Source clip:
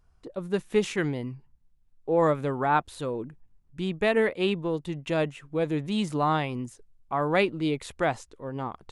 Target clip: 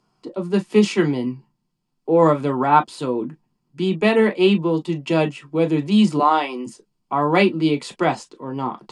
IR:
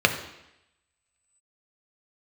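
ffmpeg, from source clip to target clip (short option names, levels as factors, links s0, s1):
-filter_complex "[0:a]asettb=1/sr,asplit=3[s0][s1][s2];[s0]atrim=end=6.194[s3];[s1]atrim=start=6.19:end=6.66,asetpts=PTS-STARTPTS,afade=t=in:d=0.004:c=qsin,afade=t=out:st=0.466:d=0.004:c=qsin,highpass=f=320:w=0.5412,highpass=f=320:w=1.3066[s4];[s2]atrim=start=6.656[s5];[s3][s4]acrossfade=d=0.004:c1=hsin:c2=qsin[s6];[s6][s5]acrossfade=d=0.004:c1=qsin:c2=hsin[s7];[1:a]atrim=start_sample=2205,afade=t=out:st=0.13:d=0.01,atrim=end_sample=6174,asetrate=83790,aresample=44100[s8];[s7][s8]afir=irnorm=-1:irlink=0,volume=0.708"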